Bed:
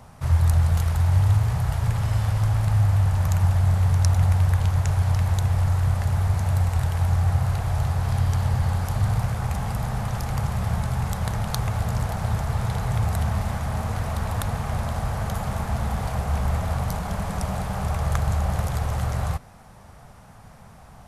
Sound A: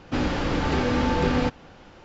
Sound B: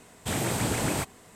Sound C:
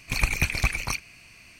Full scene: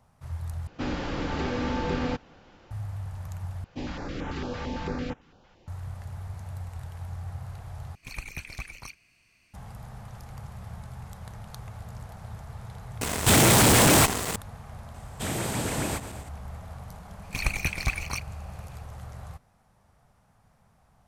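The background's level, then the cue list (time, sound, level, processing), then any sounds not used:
bed -16 dB
0.67 replace with A -6 dB
3.64 replace with A -9 dB + stepped notch 8.9 Hz 280–4500 Hz
7.95 replace with C -14 dB
13.01 add B -3.5 dB + fuzz box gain 48 dB, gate -52 dBFS
14.94 add B -2 dB + regenerating reverse delay 0.118 s, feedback 65%, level -13 dB
17.23 add C -3.5 dB + G.711 law mismatch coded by A

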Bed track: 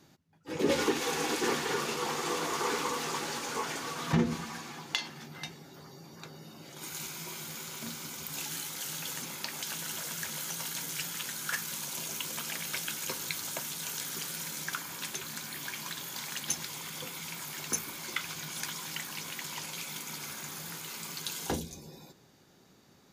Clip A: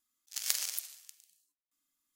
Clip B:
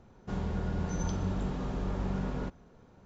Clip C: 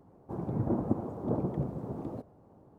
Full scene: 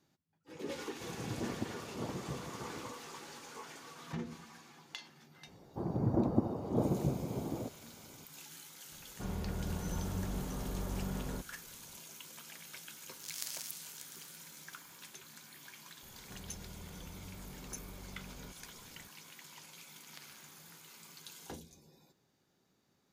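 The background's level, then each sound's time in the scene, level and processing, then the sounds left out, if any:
bed track -14 dB
0.71 add C -10 dB
5.47 add C -0.5 dB
8.92 add B -5.5 dB
12.92 add A -11.5 dB + fast leveller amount 50%
16.03 add B -2 dB + compressor 2.5:1, threshold -52 dBFS
19.67 add A -11 dB + air absorption 280 m

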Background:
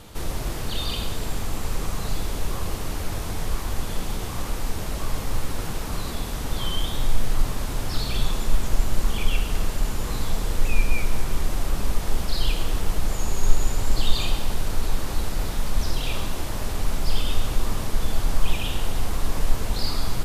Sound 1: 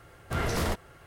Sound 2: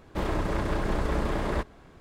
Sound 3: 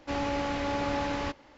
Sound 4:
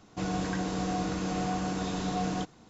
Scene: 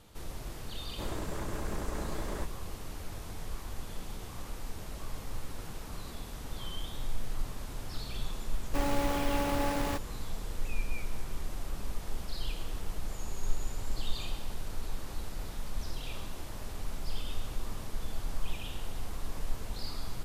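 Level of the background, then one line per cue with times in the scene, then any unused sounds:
background -13 dB
0.83 add 2 -10 dB + resonant high shelf 5200 Hz +8 dB, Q 1.5
8.66 add 3 -1 dB + level-crossing sampler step -32.5 dBFS
not used: 1, 4

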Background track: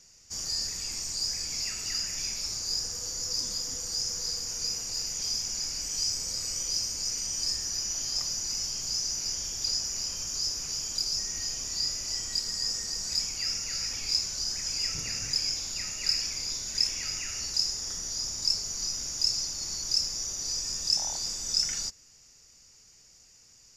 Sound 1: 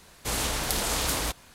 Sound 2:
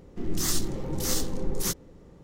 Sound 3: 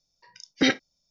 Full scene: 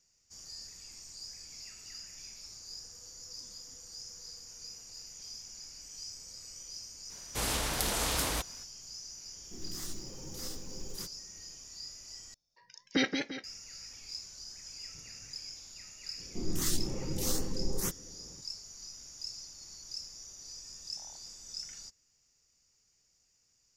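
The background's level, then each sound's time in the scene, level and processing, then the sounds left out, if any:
background track -15 dB
7.1 add 1 -4 dB
9.34 add 2 -15.5 dB + block floating point 5-bit
12.34 replace with 3 -7.5 dB + warbling echo 0.172 s, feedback 41%, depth 131 cents, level -5.5 dB
16.18 add 2 -4.5 dB + LFO notch saw up 2.3 Hz 570–5300 Hz

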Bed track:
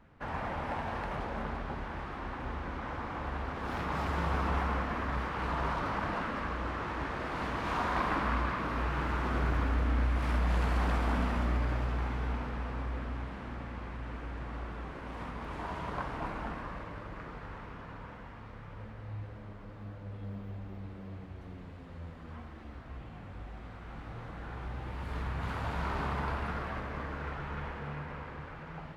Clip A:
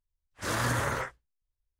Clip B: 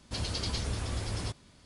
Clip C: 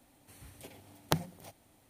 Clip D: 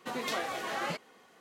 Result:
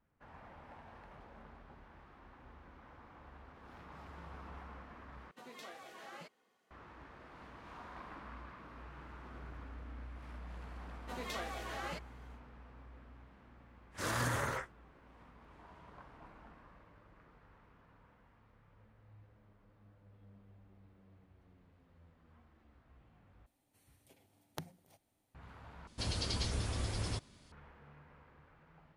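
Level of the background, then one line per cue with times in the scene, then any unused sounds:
bed track -19 dB
5.31 replace with D -16 dB + vocal rider
11.02 add D -8 dB, fades 0.10 s
13.56 add A -6 dB
23.46 replace with C -15 dB
25.87 replace with B -3 dB

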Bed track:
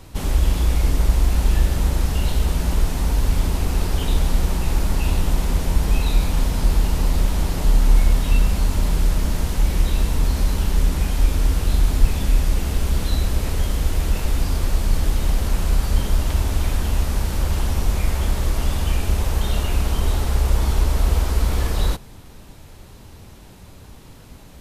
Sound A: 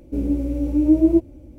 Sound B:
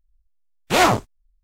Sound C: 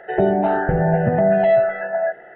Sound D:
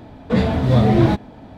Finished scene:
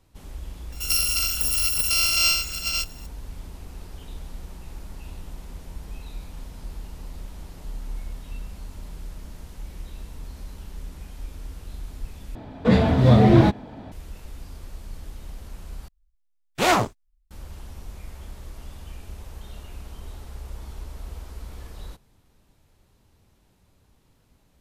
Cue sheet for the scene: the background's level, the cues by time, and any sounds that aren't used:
bed track -19 dB
0.72 add C -6 dB + FFT order left unsorted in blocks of 256 samples
12.35 replace with D
15.88 replace with B -3.5 dB
not used: A

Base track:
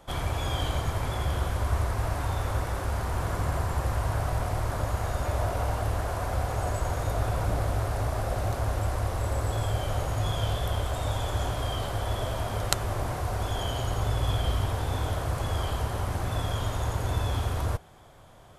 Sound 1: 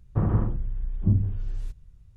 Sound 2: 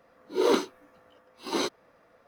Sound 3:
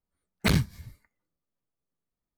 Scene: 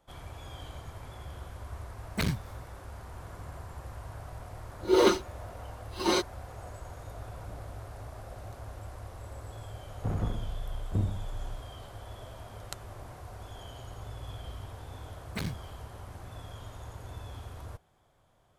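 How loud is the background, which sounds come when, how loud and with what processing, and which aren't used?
base track -15 dB
1.73 add 3 -6.5 dB
4.53 add 2 -0.5 dB + comb 5.6 ms, depth 81%
9.88 add 1 -7 dB + minimum comb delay 1.4 ms
14.91 add 3 -12 dB

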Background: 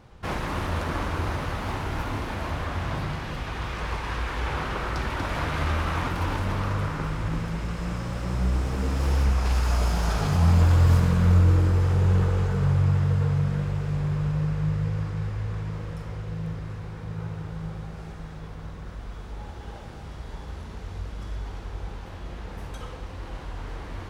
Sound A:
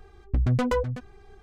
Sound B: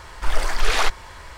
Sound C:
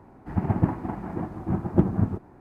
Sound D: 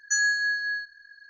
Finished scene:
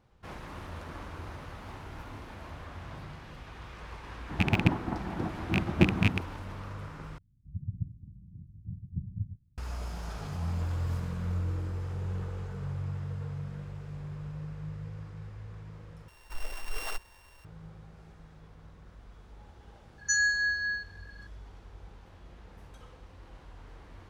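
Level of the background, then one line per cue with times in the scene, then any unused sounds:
background -14 dB
4.03 add C -3 dB + rattling part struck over -22 dBFS, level -11 dBFS
7.18 replace with C -9 dB + inverse Chebyshev low-pass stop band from 830 Hz, stop band 80 dB
16.08 replace with B -16.5 dB + sample sorter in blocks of 16 samples
19.98 add D -2.5 dB
not used: A

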